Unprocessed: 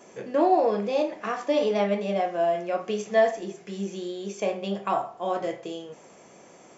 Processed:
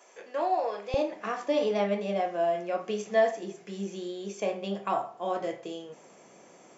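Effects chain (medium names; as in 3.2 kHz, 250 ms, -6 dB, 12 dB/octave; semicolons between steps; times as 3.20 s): high-pass 660 Hz 12 dB/octave, from 0.94 s 120 Hz; trim -3 dB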